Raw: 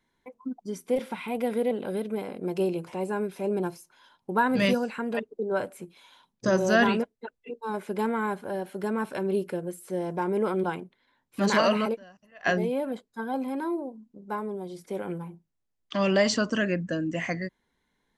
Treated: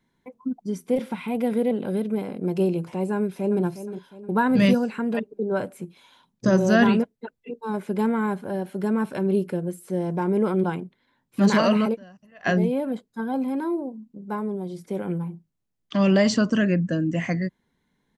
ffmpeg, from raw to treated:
-filter_complex "[0:a]asplit=2[a][b];[b]afade=t=in:st=3.15:d=0.01,afade=t=out:st=3.62:d=0.01,aecho=0:1:360|720|1080|1440|1800:0.266073|0.119733|0.0538797|0.0242459|0.0109106[c];[a][c]amix=inputs=2:normalize=0,equalizer=f=160:t=o:w=1.9:g=9"

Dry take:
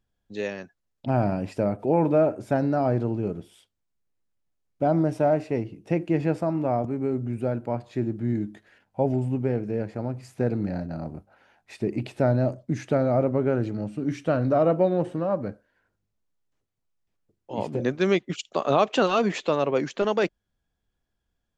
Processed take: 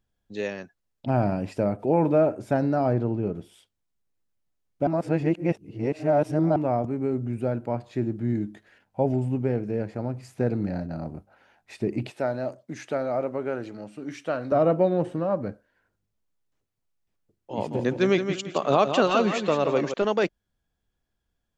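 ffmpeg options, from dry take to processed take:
-filter_complex "[0:a]asettb=1/sr,asplit=3[a][b][c];[a]atrim=end=2.934[d];[b]atrim=start=2.93:end=3.35,asetpts=PTS-STARTPTS,afade=t=in:d=0.004:c=qsin,afade=t=out:st=0.416:d=0.004:c=qsin,aemphasis=mode=reproduction:type=50fm[e];[c]atrim=start=3.346[f];[d][e]acrossfade=d=0.004:c1=hsin:c2=qsin[g];[g][f]acrossfade=d=0.004:c1=qsin:c2=hsin,asettb=1/sr,asplit=3[h][i][j];[h]atrim=end=12.104[k];[i]atrim=start=12.1:end=14.52,asetpts=PTS-STARTPTS,afade=t=in:d=0.004:c=qsin,afade=t=out:st=2.416:d=0.004:c=qsin,highpass=f=650:p=1[l];[j]atrim=start=14.516[m];[k][l]acrossfade=d=0.004:c1=hsin:c2=qsin[n];[n][m]acrossfade=d=0.004:c1=qsin:c2=hsin,asettb=1/sr,asplit=3[o][p][q];[o]atrim=end=17.544[r];[p]atrim=start=17.54:end=19.94,asetpts=PTS-STARTPTS,afade=t=in:d=0.004:c=qsin,afade=t=out:st=2.396:d=0.004:c=qsin,aecho=1:1:169|338|507|676:0.398|0.123|0.0383|0.0119,atrim=end_sample=105840[s];[q]atrim=start=19.936[t];[r][s]acrossfade=d=0.004:c1=hsin:c2=qsin[u];[u][t]acrossfade=d=0.004:c1=qsin:c2=hsin,asplit=3[v][w][x];[v]atrim=end=4.872[y];[w]atrim=start=4.868:end=6.562,asetpts=PTS-STARTPTS,areverse[z];[x]atrim=start=6.558[aa];[y][z]acrossfade=d=0.004:c1=hsin:c2=hsin[ab];[ab][aa]acrossfade=d=0.004:c1=hsin:c2=hsin"

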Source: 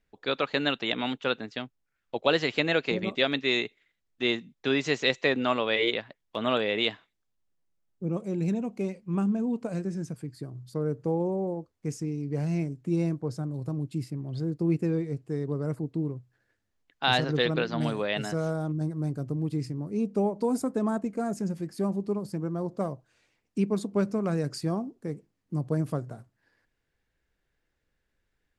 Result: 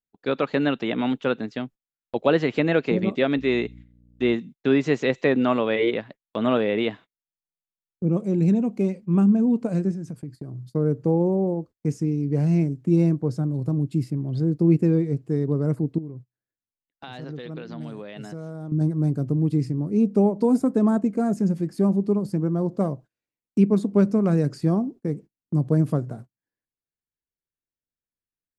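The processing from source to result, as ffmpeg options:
-filter_complex "[0:a]asettb=1/sr,asplit=3[a][b][c];[a]atrim=end=3.374[d];[b]atrim=start=3.37:end=4.34,asetpts=PTS-STARTPTS,afade=t=in:d=0.004:c=qsin,afade=t=out:st=0.966:d=0.004:c=qsin,aeval=exprs='val(0)+0.00398*(sin(2*PI*60*n/s)+sin(2*PI*2*60*n/s)/2+sin(2*PI*3*60*n/s)/3+sin(2*PI*4*60*n/s)/4+sin(2*PI*5*60*n/s)/5)':c=same[e];[c]atrim=start=4.336[f];[d][e]acrossfade=d=0.004:c1=hsin:c2=qsin[g];[g][f]acrossfade=d=0.004:c1=qsin:c2=hsin,asettb=1/sr,asplit=3[h][i][j];[h]atrim=end=9.914[k];[i]atrim=start=9.91:end=10.72,asetpts=PTS-STARTPTS,afade=t=in:d=0.004:c=qsin,afade=t=out:st=0.806:d=0.004:c=qsin,acompressor=threshold=-38dB:ratio=4:attack=3.2:release=140:knee=1:detection=peak[l];[j]atrim=start=10.716[m];[k][l]acrossfade=d=0.004:c1=hsin:c2=qsin[n];[n][m]acrossfade=d=0.004:c1=qsin:c2=hsin,asettb=1/sr,asplit=3[o][p][q];[o]atrim=end=15.984[r];[p]atrim=start=15.98:end=18.72,asetpts=PTS-STARTPTS,afade=t=in:d=0.004:c=qsin,afade=t=out:st=2.736:d=0.004:c=qsin,acompressor=threshold=-41dB:ratio=4:attack=3.2:release=140:knee=1:detection=peak[s];[q]atrim=start=18.716[t];[r][s]acrossfade=d=0.004:c1=hsin:c2=qsin[u];[u][t]acrossfade=d=0.004:c1=qsin:c2=hsin,acrossover=split=2600[v][w];[w]acompressor=threshold=-43dB:ratio=4:attack=1:release=60[x];[v][x]amix=inputs=2:normalize=0,agate=range=-27dB:threshold=-47dB:ratio=16:detection=peak,equalizer=f=210:t=o:w=2.6:g=8,volume=1dB"

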